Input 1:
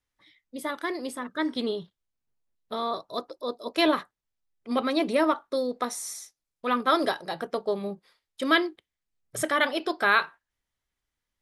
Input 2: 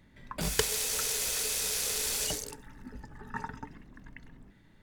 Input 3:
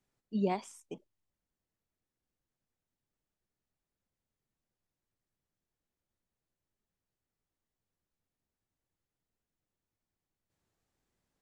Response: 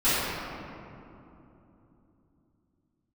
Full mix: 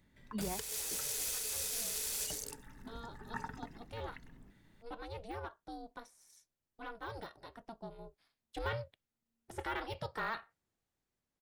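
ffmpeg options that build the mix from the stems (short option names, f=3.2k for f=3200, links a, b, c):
-filter_complex "[0:a]aeval=exprs='val(0)*sin(2*PI*230*n/s)':c=same,deesser=0.95,asoftclip=type=tanh:threshold=-16.5dB,adelay=150,volume=-13dB,afade=t=in:st=7.99:d=0.31:silence=0.421697[a];[1:a]highshelf=f=6.9k:g=7,volume=-9dB[b];[2:a]volume=-7dB[c];[a][b][c]amix=inputs=3:normalize=0,dynaudnorm=f=740:g=5:m=4.5dB,alimiter=level_in=2.5dB:limit=-24dB:level=0:latency=1:release=243,volume=-2.5dB"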